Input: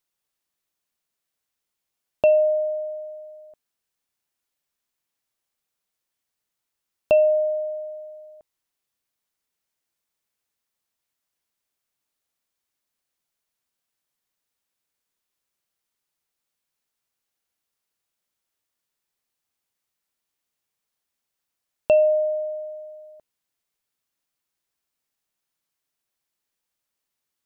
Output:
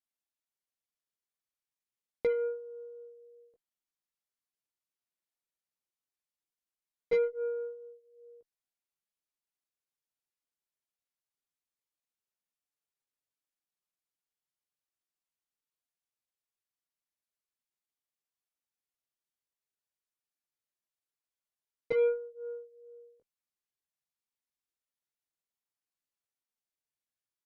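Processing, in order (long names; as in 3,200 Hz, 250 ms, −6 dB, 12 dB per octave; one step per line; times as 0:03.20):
multi-voice chorus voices 6, 0.16 Hz, delay 16 ms, depth 4 ms
harmonic generator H 2 −27 dB, 7 −24 dB, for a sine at −12.5 dBFS
pitch shifter −4.5 semitones
level −6.5 dB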